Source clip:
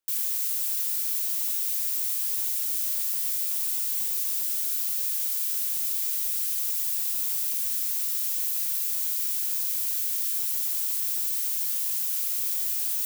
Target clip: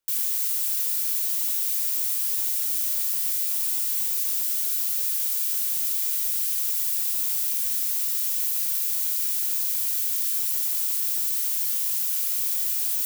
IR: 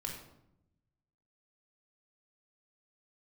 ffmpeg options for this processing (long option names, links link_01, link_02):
-filter_complex "[0:a]asplit=2[link_01][link_02];[1:a]atrim=start_sample=2205,lowshelf=frequency=160:gain=9[link_03];[link_02][link_03]afir=irnorm=-1:irlink=0,volume=-6.5dB[link_04];[link_01][link_04]amix=inputs=2:normalize=0"